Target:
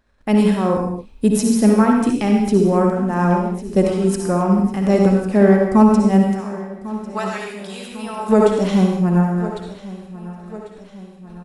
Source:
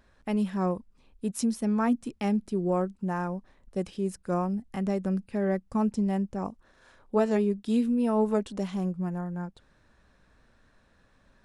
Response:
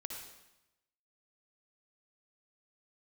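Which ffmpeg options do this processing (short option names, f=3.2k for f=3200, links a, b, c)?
-filter_complex "[0:a]asplit=3[a][b][c];[a]afade=t=out:st=6.22:d=0.02[d];[b]highpass=1.3k,afade=t=in:st=6.22:d=0.02,afade=t=out:st=8.28:d=0.02[e];[c]afade=t=in:st=8.28:d=0.02[f];[d][e][f]amix=inputs=3:normalize=0,agate=range=-18dB:threshold=-59dB:ratio=16:detection=peak,tremolo=f=2.4:d=0.61,aecho=1:1:1098|2196|3294|4392|5490:0.133|0.0733|0.0403|0.0222|0.0122[g];[1:a]atrim=start_sample=2205,afade=t=out:st=0.33:d=0.01,atrim=end_sample=14994[h];[g][h]afir=irnorm=-1:irlink=0,alimiter=level_in=20.5dB:limit=-1dB:release=50:level=0:latency=1,volume=-1dB"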